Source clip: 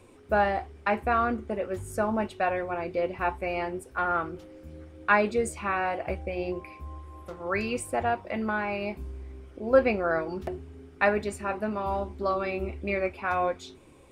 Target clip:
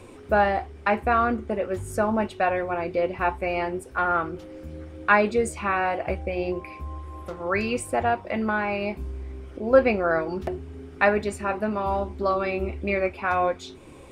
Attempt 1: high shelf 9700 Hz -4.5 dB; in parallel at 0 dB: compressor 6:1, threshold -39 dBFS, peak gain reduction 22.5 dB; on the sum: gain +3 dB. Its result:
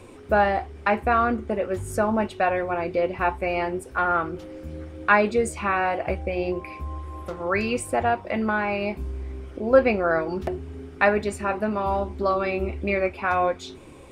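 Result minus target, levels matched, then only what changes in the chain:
compressor: peak gain reduction -7 dB
change: compressor 6:1, threshold -47.5 dBFS, peak gain reduction 29.5 dB

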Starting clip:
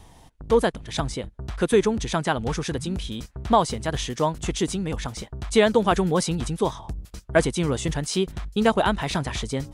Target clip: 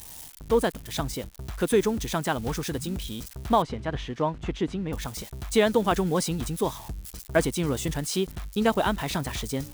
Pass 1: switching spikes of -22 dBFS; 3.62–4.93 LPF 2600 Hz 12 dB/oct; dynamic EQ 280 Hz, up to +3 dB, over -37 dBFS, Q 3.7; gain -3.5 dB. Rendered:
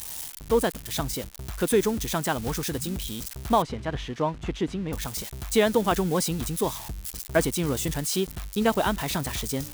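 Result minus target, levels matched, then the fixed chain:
switching spikes: distortion +7 dB
switching spikes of -29 dBFS; 3.62–4.93 LPF 2600 Hz 12 dB/oct; dynamic EQ 280 Hz, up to +3 dB, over -37 dBFS, Q 3.7; gain -3.5 dB

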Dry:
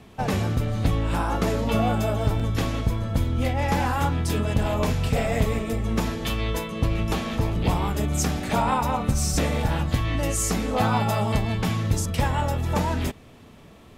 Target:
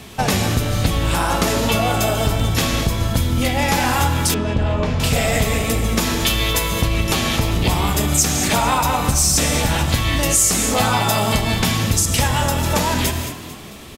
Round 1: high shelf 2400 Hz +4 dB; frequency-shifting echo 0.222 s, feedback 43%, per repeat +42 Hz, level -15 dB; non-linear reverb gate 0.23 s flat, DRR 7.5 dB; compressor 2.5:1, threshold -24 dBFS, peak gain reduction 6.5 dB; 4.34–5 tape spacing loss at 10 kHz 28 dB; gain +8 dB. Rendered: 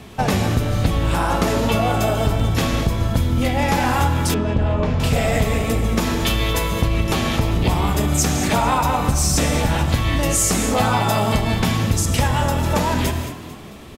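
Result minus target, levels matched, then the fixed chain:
4000 Hz band -3.5 dB
high shelf 2400 Hz +12.5 dB; frequency-shifting echo 0.222 s, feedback 43%, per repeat +42 Hz, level -15 dB; non-linear reverb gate 0.23 s flat, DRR 7.5 dB; compressor 2.5:1, threshold -24 dBFS, peak gain reduction 8.5 dB; 4.34–5 tape spacing loss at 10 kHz 28 dB; gain +8 dB

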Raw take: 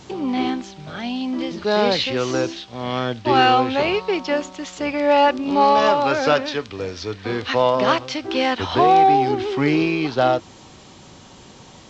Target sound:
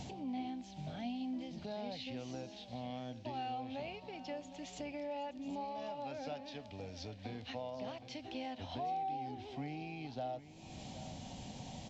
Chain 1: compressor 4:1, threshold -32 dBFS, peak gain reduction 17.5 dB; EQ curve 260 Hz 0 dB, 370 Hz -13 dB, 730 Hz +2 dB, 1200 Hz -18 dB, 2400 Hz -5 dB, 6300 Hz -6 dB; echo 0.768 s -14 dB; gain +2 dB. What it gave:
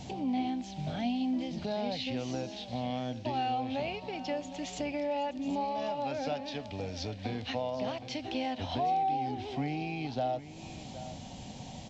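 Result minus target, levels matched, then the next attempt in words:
compressor: peak gain reduction -9 dB
compressor 4:1, threshold -44 dBFS, peak gain reduction 26.5 dB; EQ curve 260 Hz 0 dB, 370 Hz -13 dB, 730 Hz +2 dB, 1200 Hz -18 dB, 2400 Hz -5 dB, 6300 Hz -6 dB; echo 0.768 s -14 dB; gain +2 dB

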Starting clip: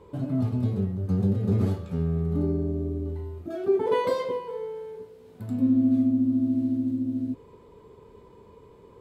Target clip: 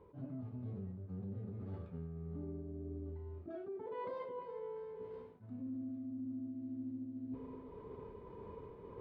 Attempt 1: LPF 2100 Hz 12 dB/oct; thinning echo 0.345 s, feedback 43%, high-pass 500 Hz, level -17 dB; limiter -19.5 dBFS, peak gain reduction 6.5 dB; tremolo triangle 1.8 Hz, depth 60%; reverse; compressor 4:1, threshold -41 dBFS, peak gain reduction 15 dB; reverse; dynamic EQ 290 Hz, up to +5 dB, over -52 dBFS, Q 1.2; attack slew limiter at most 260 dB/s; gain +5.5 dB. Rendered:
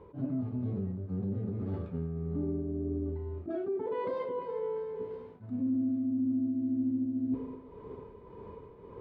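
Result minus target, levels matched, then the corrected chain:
compressor: peak gain reduction -8.5 dB; 1000 Hz band -5.0 dB
LPF 2100 Hz 12 dB/oct; thinning echo 0.345 s, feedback 43%, high-pass 500 Hz, level -17 dB; limiter -19.5 dBFS, peak gain reduction 6.5 dB; tremolo triangle 1.8 Hz, depth 60%; reverse; compressor 4:1, threshold -52 dBFS, peak gain reduction 23 dB; reverse; dynamic EQ 980 Hz, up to +5 dB, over -52 dBFS, Q 1.2; attack slew limiter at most 260 dB/s; gain +5.5 dB

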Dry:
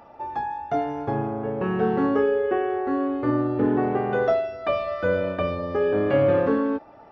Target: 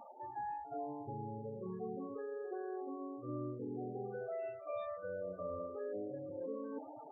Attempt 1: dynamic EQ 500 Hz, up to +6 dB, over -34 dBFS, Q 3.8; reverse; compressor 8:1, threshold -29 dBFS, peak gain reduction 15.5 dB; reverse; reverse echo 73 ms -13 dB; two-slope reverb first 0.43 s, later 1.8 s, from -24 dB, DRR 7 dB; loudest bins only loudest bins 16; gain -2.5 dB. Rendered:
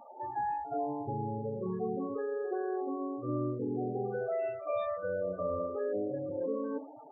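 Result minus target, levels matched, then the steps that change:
compressor: peak gain reduction -8.5 dB
change: compressor 8:1, threshold -38.5 dBFS, peak gain reduction 24 dB

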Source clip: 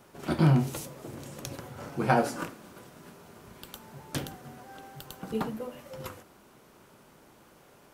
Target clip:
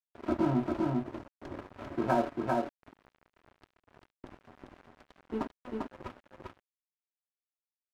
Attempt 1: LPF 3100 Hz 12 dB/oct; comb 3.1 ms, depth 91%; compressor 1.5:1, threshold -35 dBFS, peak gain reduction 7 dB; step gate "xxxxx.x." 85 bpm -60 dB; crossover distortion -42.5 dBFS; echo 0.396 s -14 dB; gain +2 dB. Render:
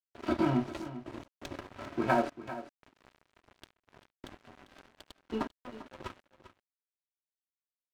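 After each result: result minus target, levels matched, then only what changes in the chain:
echo-to-direct -11.5 dB; 4000 Hz band +6.5 dB
change: echo 0.396 s -2.5 dB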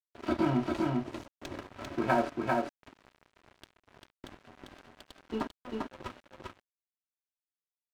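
4000 Hz band +6.5 dB
change: LPF 1200 Hz 12 dB/oct

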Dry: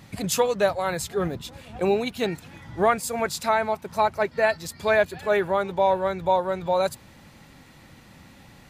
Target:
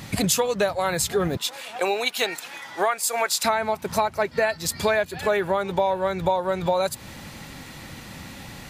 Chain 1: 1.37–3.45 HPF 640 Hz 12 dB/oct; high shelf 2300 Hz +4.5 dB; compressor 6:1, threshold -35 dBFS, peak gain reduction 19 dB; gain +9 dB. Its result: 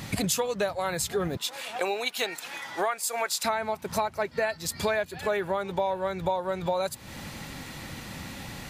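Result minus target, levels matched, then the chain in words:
compressor: peak gain reduction +5.5 dB
1.37–3.45 HPF 640 Hz 12 dB/oct; high shelf 2300 Hz +4.5 dB; compressor 6:1, threshold -28.5 dBFS, peak gain reduction 13.5 dB; gain +9 dB

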